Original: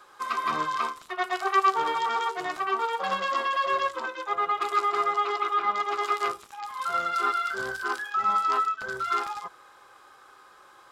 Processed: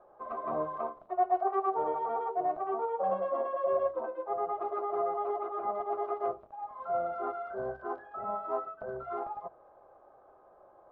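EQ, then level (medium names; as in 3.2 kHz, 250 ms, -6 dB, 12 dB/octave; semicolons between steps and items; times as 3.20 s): resonant low-pass 650 Hz, resonance Q 6.9; bass shelf 130 Hz +9.5 dB; hum notches 50/100/150 Hz; -6.0 dB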